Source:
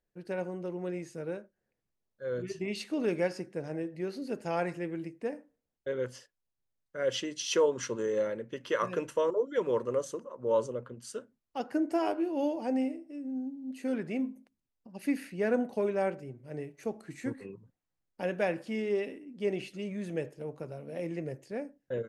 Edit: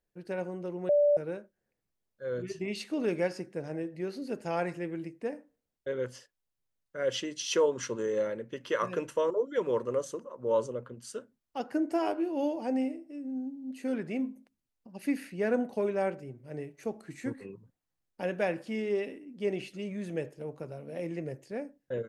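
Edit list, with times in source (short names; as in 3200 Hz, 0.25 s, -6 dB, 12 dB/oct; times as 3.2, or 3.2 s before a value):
0.89–1.17 bleep 584 Hz -20 dBFS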